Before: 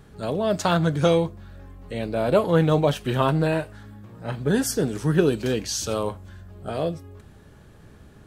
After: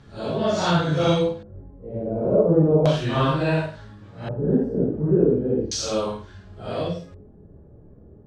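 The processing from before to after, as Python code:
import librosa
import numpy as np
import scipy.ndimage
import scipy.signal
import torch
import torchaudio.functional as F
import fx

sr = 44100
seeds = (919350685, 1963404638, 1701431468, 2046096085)

y = fx.phase_scramble(x, sr, seeds[0], window_ms=200)
y = fx.room_flutter(y, sr, wall_m=8.9, rt60_s=0.35)
y = fx.filter_lfo_lowpass(y, sr, shape='square', hz=0.35, low_hz=480.0, high_hz=5200.0, q=1.3)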